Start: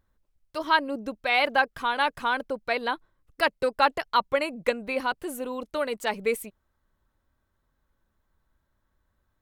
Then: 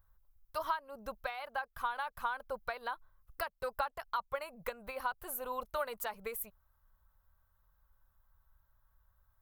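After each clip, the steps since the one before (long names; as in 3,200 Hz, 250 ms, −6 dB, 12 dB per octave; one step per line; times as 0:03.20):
guitar amp tone stack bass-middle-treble 10-0-10
downward compressor 16 to 1, threshold −39 dBFS, peak gain reduction 18 dB
flat-topped bell 4,200 Hz −15 dB 2.7 octaves
level +10 dB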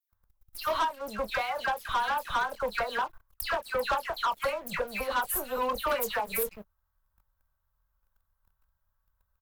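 double-tracking delay 24 ms −10 dB
all-pass dispersion lows, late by 126 ms, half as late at 2,500 Hz
leveller curve on the samples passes 3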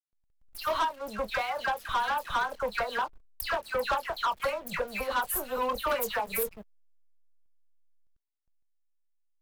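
slack as between gear wheels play −48.5 dBFS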